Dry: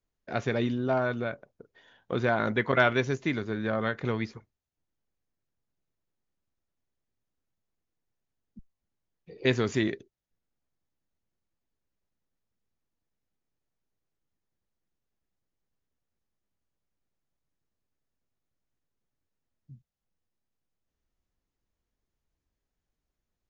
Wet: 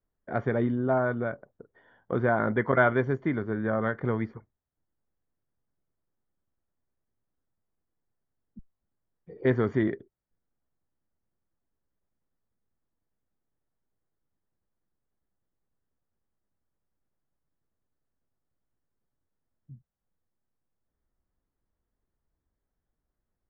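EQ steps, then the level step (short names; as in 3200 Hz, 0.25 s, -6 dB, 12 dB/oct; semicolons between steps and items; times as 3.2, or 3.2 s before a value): polynomial smoothing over 41 samples; air absorption 100 m; +2.0 dB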